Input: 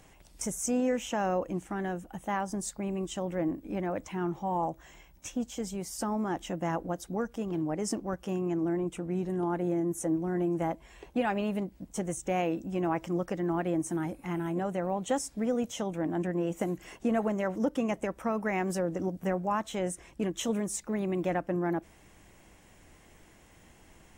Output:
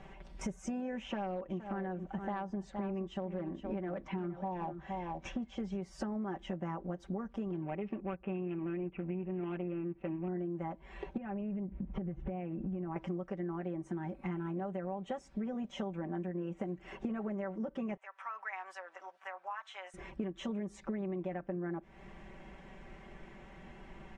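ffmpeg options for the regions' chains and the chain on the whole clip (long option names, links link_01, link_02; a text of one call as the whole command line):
ffmpeg -i in.wav -filter_complex "[0:a]asettb=1/sr,asplit=3[link_01][link_02][link_03];[link_01]atrim=end=1.034[link_04];[link_02]atrim=start=1.03:end=5.82,asetpts=PTS-STARTPTS,afade=type=in:duration=0.004:curve=qsin,afade=type=out:start_time=4.786:duration=0.004:curve=qsin,lowpass=6000,asoftclip=type=hard:threshold=-24.5dB,aecho=1:1:467:0.251,atrim=end_sample=211239[link_05];[link_03]atrim=start=5.816[link_06];[link_04][link_05]acrossfade=duration=0.004:curve1=hsin:curve2=qsin[link_07];[link_07][link_06]acrossfade=duration=0.004:curve1=qsin:curve2=hsin,asettb=1/sr,asplit=3[link_08][link_09][link_10];[link_08]atrim=end=7.624[link_11];[link_09]atrim=start=7.62:end=10.28,asetpts=PTS-STARTPTS,afade=type=in:duration=0.004:curve=qsin,afade=type=out:start_time=2.656:duration=0.004:curve=qsin,adynamicsmooth=sensitivity=4.5:basefreq=990,lowpass=frequency=2600:width_type=q:width=8.3[link_12];[link_10]atrim=start=10.276[link_13];[link_11][link_12]acrossfade=duration=0.004:curve1=hsin:curve2=qsin[link_14];[link_14][link_13]acrossfade=duration=0.004:curve1=qsin:curve2=hsin,asettb=1/sr,asplit=3[link_15][link_16][link_17];[link_15]atrim=end=11.174[link_18];[link_16]atrim=start=11.17:end=12.96,asetpts=PTS-STARTPTS,afade=type=in:duration=0.004:curve=qsin,afade=type=out:start_time=1.786:duration=0.004:curve=qsin,lowpass=frequency=2800:width=0.5412,lowpass=frequency=2800:width=1.3066,lowshelf=frequency=240:gain=12,acompressor=threshold=-37dB:ratio=5:attack=3.2:release=140:knee=1:detection=peak[link_19];[link_17]atrim=start=12.956[link_20];[link_18][link_19]acrossfade=duration=0.004:curve1=hsin:curve2=qsin[link_21];[link_21][link_20]acrossfade=duration=0.004:curve1=qsin:curve2=hsin,asettb=1/sr,asplit=3[link_22][link_23][link_24];[link_22]atrim=end=17.974[link_25];[link_23]atrim=start=17.97:end=19.94,asetpts=PTS-STARTPTS,afade=type=in:duration=0.004:curve=qsin,afade=type=out:start_time=1.966:duration=0.004:curve=qsin,highpass=frequency=950:width=0.5412,highpass=frequency=950:width=1.3066,acompressor=threshold=-58dB:ratio=1.5:attack=3.2:release=140:knee=1:detection=peak[link_26];[link_24]atrim=start=19.936[link_27];[link_25][link_26]acrossfade=duration=0.004:curve1=hsin:curve2=qsin[link_28];[link_28][link_27]acrossfade=duration=0.004:curve1=qsin:curve2=hsin,lowpass=2400,aecho=1:1:5.2:0.78,acompressor=threshold=-39dB:ratio=12,volume=4dB" out.wav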